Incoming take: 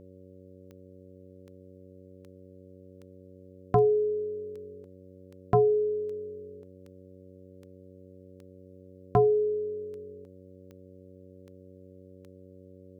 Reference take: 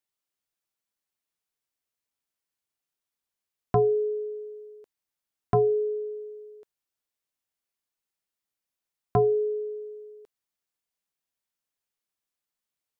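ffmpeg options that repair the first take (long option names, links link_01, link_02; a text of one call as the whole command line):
ffmpeg -i in.wav -af "adeclick=threshold=4,bandreject=frequency=93.2:width_type=h:width=4,bandreject=frequency=186.4:width_type=h:width=4,bandreject=frequency=279.6:width_type=h:width=4,bandreject=frequency=372.8:width_type=h:width=4,bandreject=frequency=466:width_type=h:width=4,bandreject=frequency=559.2:width_type=h:width=4" out.wav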